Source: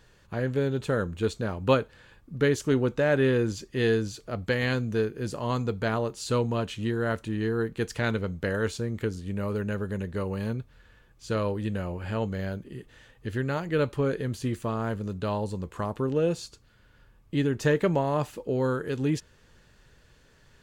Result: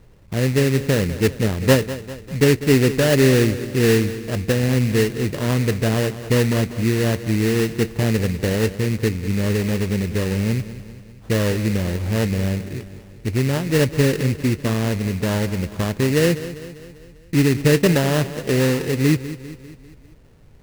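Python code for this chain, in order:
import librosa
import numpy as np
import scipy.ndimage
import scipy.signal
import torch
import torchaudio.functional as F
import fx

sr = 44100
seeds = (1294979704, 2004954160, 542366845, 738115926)

p1 = fx.env_lowpass_down(x, sr, base_hz=1200.0, full_db=-22.5)
p2 = fx.tilt_shelf(p1, sr, db=8.5, hz=910.0)
p3 = fx.sample_hold(p2, sr, seeds[0], rate_hz=2300.0, jitter_pct=20)
p4 = p3 + fx.echo_feedback(p3, sr, ms=198, feedback_pct=54, wet_db=-14.0, dry=0)
y = p4 * librosa.db_to_amplitude(2.5)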